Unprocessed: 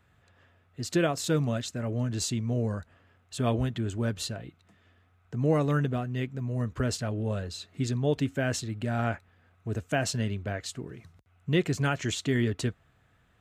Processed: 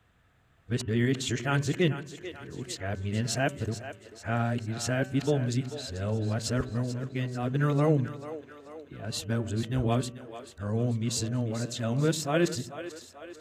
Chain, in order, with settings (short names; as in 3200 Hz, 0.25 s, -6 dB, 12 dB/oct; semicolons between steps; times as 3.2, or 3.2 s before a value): whole clip reversed; de-hum 191.5 Hz, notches 16; on a send: split-band echo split 320 Hz, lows 83 ms, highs 0.439 s, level -12 dB